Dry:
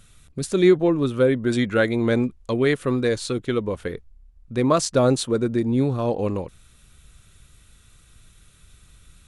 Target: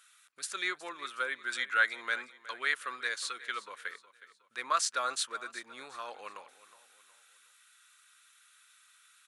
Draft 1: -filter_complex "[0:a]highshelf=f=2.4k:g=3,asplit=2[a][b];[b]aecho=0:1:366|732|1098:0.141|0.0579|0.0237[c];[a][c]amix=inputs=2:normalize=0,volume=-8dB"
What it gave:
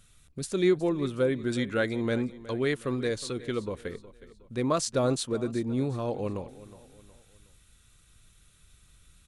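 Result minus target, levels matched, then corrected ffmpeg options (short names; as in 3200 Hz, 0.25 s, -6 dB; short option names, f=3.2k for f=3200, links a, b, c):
1000 Hz band -7.0 dB
-filter_complex "[0:a]highpass=f=1.4k:t=q:w=2.3,highshelf=f=2.4k:g=3,asplit=2[a][b];[b]aecho=0:1:366|732|1098:0.141|0.0579|0.0237[c];[a][c]amix=inputs=2:normalize=0,volume=-8dB"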